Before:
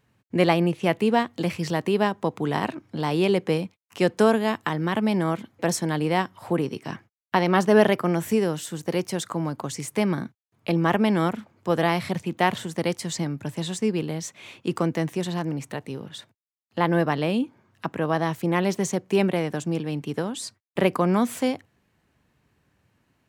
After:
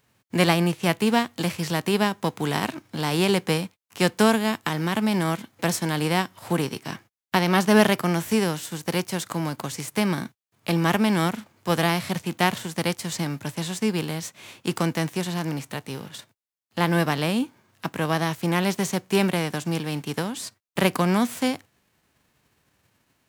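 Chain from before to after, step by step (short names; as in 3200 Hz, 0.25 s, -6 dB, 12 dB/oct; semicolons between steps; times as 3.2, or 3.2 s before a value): spectral whitening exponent 0.6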